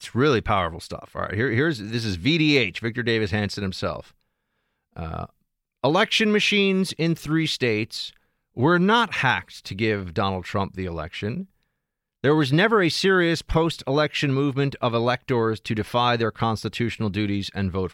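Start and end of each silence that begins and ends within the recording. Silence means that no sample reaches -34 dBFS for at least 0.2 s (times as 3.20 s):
4.00–4.96 s
5.26–5.84 s
8.09–8.57 s
11.43–12.24 s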